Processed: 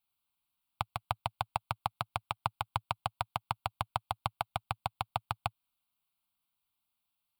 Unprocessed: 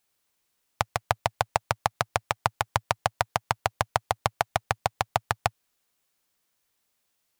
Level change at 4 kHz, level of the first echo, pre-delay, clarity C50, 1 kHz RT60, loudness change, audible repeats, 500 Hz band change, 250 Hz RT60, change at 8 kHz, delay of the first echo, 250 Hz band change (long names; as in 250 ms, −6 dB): −8.0 dB, no echo audible, no reverb audible, no reverb audible, no reverb audible, −9.0 dB, no echo audible, −13.5 dB, no reverb audible, −16.0 dB, no echo audible, −8.5 dB